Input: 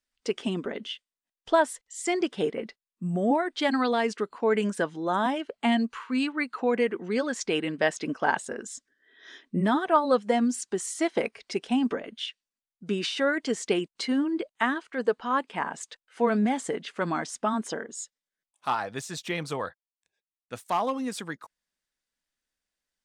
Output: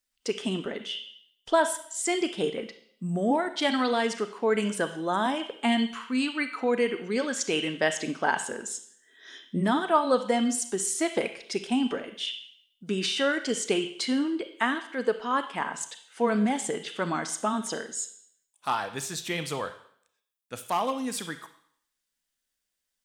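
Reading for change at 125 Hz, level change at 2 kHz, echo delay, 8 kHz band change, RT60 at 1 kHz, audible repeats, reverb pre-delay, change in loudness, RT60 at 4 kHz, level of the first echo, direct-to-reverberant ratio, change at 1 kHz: -0.5 dB, +0.5 dB, no echo, +5.5 dB, 0.65 s, no echo, 30 ms, 0.0 dB, 0.65 s, no echo, 8.5 dB, -0.5 dB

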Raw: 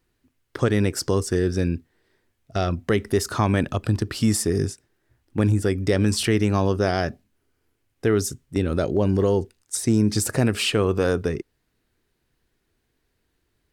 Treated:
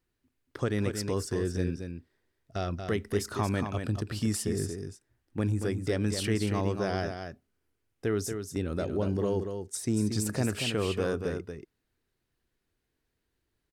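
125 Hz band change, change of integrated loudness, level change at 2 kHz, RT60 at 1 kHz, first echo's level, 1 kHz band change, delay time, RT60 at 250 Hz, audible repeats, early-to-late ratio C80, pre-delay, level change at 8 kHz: -8.0 dB, -8.5 dB, -8.0 dB, no reverb, -7.0 dB, -8.0 dB, 232 ms, no reverb, 1, no reverb, no reverb, -8.0 dB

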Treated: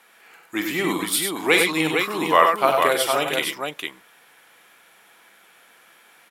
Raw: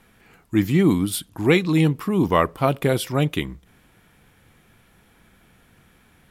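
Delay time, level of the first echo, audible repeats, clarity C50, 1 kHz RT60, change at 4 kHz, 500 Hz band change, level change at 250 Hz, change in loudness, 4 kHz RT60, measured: 44 ms, -11.0 dB, 3, no reverb, no reverb, +7.0 dB, +1.0 dB, -7.0 dB, +0.5 dB, no reverb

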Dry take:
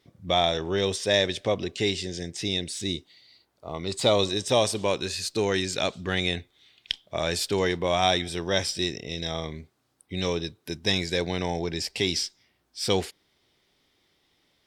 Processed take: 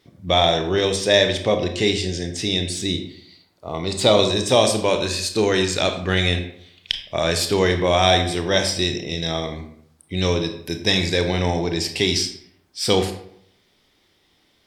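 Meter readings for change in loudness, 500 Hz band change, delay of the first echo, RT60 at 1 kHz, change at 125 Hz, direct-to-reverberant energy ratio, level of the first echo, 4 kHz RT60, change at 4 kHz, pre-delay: +6.5 dB, +6.5 dB, no echo, 0.65 s, +8.0 dB, 6.0 dB, no echo, 0.45 s, +6.5 dB, 23 ms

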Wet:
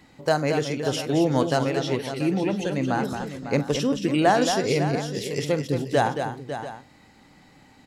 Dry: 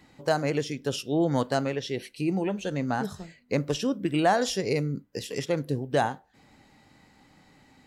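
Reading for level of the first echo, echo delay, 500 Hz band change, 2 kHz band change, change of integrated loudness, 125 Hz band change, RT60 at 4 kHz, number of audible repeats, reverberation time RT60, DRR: -16.5 dB, 45 ms, +4.0 dB, +4.0 dB, +3.5 dB, +4.0 dB, no reverb, 4, no reverb, no reverb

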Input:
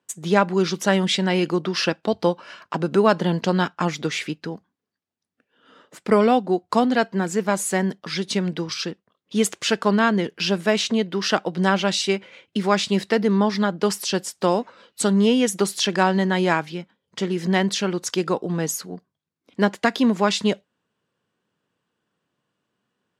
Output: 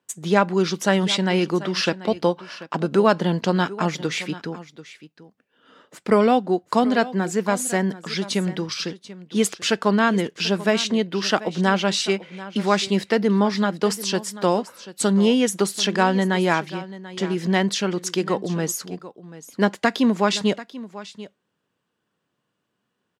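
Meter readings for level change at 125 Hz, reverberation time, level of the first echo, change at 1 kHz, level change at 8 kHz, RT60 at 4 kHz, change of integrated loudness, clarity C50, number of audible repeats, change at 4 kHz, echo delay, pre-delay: 0.0 dB, no reverb, -16.5 dB, 0.0 dB, 0.0 dB, no reverb, 0.0 dB, no reverb, 1, 0.0 dB, 738 ms, no reverb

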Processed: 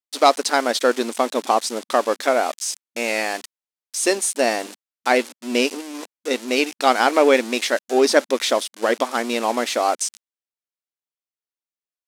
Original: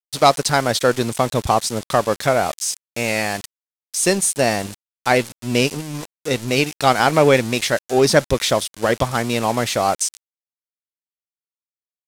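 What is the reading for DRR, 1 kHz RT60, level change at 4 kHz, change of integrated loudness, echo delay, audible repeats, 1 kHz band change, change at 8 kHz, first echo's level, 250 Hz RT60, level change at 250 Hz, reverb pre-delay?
no reverb, no reverb, -1.5 dB, -1.5 dB, no echo, no echo, -1.0 dB, -3.0 dB, no echo, no reverb, -2.5 dB, no reverb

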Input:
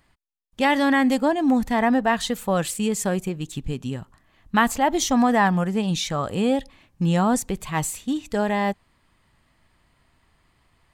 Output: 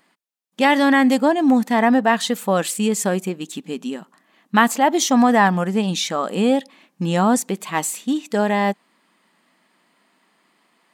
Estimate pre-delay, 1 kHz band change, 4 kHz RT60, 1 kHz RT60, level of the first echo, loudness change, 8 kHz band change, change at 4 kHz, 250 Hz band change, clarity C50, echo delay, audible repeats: no reverb, +4.0 dB, no reverb, no reverb, no echo, +4.0 dB, +4.0 dB, +4.0 dB, +3.5 dB, no reverb, no echo, no echo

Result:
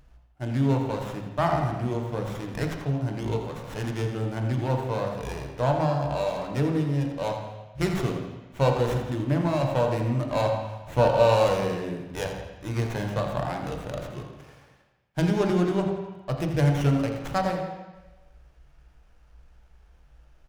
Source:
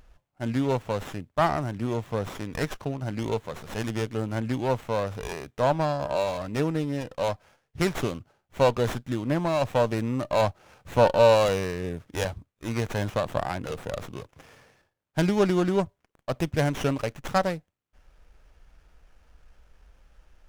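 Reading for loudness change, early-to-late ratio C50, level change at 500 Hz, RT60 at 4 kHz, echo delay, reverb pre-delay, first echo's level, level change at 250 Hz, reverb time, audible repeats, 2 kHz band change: +0.5 dB, 4.0 dB, -1.0 dB, 1.1 s, 84 ms, 3 ms, -10.0 dB, +1.0 dB, 1.1 s, 1, -2.0 dB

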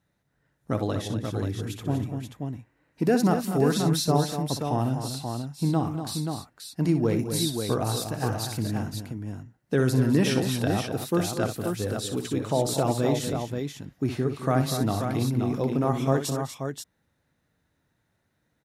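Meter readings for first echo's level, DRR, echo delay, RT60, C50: -10.5 dB, no reverb, 62 ms, no reverb, no reverb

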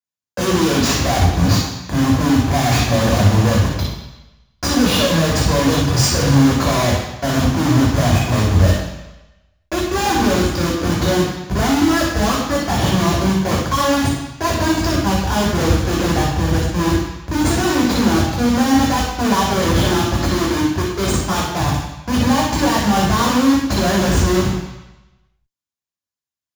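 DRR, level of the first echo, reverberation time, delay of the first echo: -4.5 dB, no echo, 1.0 s, no echo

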